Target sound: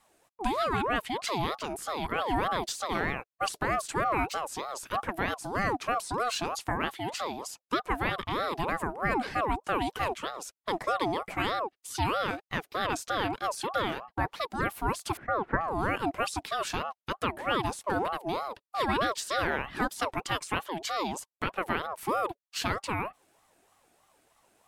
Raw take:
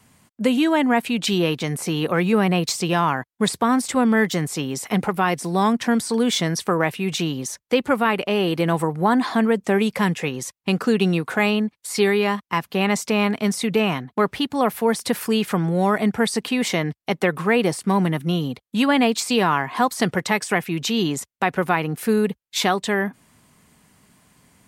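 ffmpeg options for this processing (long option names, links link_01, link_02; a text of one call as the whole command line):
ffmpeg -i in.wav -filter_complex "[0:a]asettb=1/sr,asplit=3[link_01][link_02][link_03];[link_01]atrim=end=15.174[link_04];[link_02]atrim=start=15.17:end=15.61,asetpts=PTS-STARTPTS,afade=type=in:duration=0.004:curve=qsin,afade=type=out:start_time=0.436:duration=0.004:curve=qsin,lowpass=frequency=880:width_type=q:width=4.9[link_05];[link_03]atrim=start=15.606[link_06];[link_04][link_05]acrossfade=duration=0.004:curve1=hsin:curve2=qsin[link_07];[link_07][link_06]acrossfade=duration=0.004:curve1=qsin:curve2=hsin,aeval=exprs='val(0)*sin(2*PI*740*n/s+740*0.35/3.2*sin(2*PI*3.2*n/s))':channel_layout=same,volume=-7.5dB" out.wav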